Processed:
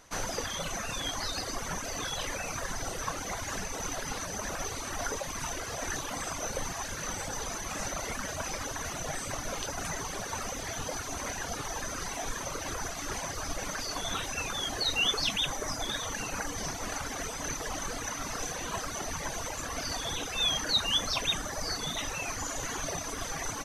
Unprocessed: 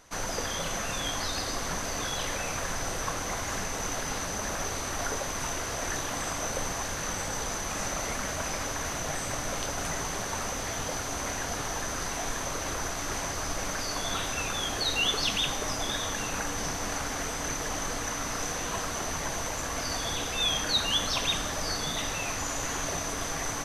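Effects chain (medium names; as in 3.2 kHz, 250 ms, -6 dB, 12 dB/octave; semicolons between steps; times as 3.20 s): reverb removal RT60 1.5 s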